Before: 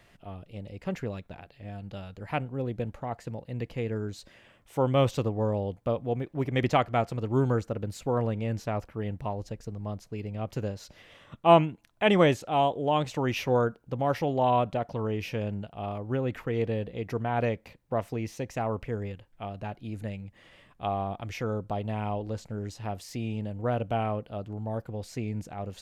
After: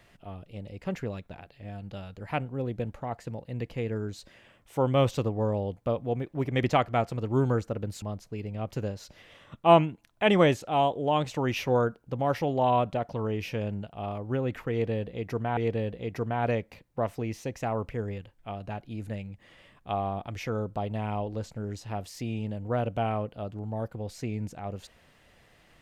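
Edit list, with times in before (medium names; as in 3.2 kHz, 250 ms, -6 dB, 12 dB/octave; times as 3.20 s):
8.02–9.82 s: delete
16.51–17.37 s: loop, 2 plays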